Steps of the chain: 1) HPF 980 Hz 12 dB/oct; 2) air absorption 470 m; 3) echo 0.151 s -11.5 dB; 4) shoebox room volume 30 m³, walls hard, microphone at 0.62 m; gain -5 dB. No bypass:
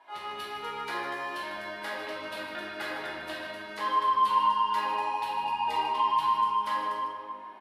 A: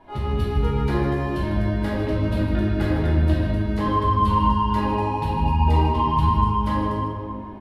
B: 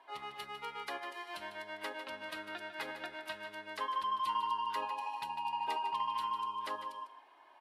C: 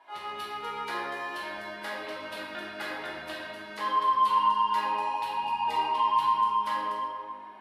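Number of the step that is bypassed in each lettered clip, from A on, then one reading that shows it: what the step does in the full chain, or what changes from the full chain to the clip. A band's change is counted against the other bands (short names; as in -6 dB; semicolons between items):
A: 1, 250 Hz band +21.0 dB; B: 4, echo-to-direct 8.5 dB to -11.5 dB; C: 3, momentary loudness spread change +1 LU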